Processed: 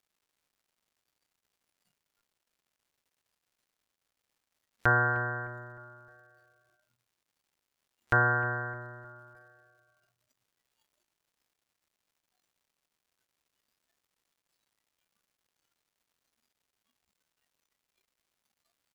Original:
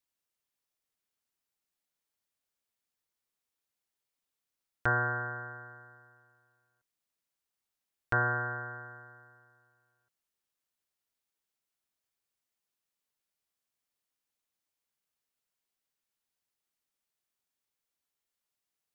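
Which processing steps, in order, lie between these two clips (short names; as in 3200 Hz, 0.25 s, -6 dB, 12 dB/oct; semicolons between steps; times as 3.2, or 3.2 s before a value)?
crackle 360/s -55 dBFS; feedback echo 0.307 s, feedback 49%, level -18 dB; spectral noise reduction 14 dB; gain +4 dB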